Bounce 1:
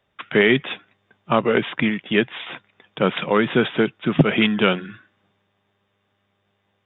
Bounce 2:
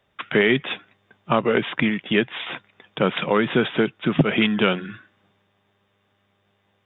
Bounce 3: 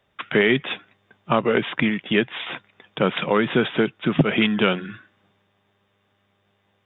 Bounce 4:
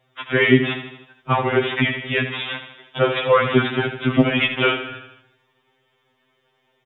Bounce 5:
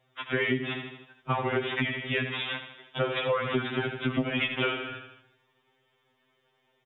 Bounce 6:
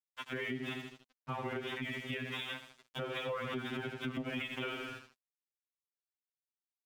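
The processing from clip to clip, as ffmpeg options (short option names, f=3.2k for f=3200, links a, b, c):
-af "acompressor=threshold=-24dB:ratio=1.5,volume=2.5dB"
-af anull
-af "aecho=1:1:79|158|237|316|395|474:0.316|0.177|0.0992|0.0555|0.0311|0.0174,afftfilt=real='re*2.45*eq(mod(b,6),0)':imag='im*2.45*eq(mod(b,6),0)':win_size=2048:overlap=0.75,volume=5dB"
-af "acompressor=threshold=-19dB:ratio=6,volume=-5dB"
-af "aeval=exprs='sgn(val(0))*max(abs(val(0))-0.00398,0)':c=same,alimiter=level_in=1dB:limit=-24dB:level=0:latency=1:release=158,volume=-1dB,equalizer=f=230:t=o:w=0.38:g=4,volume=-4.5dB"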